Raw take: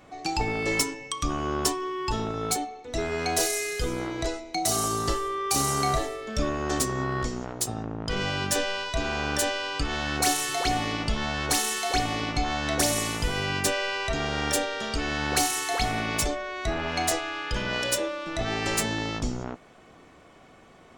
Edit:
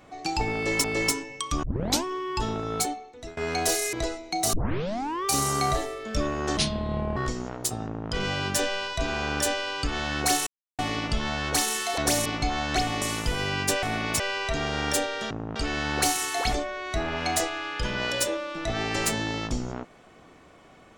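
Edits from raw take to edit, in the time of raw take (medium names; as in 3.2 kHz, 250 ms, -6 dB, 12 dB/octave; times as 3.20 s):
0.55–0.84 s: loop, 2 plays
1.34 s: tape start 0.41 s
2.61–3.08 s: fade out, to -20.5 dB
3.64–4.15 s: delete
4.75 s: tape start 0.72 s
6.79–7.13 s: speed 57%
7.82–8.07 s: copy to 14.90 s
10.43–10.75 s: mute
11.94–12.20 s: swap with 12.70–12.98 s
15.87–16.24 s: move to 13.79 s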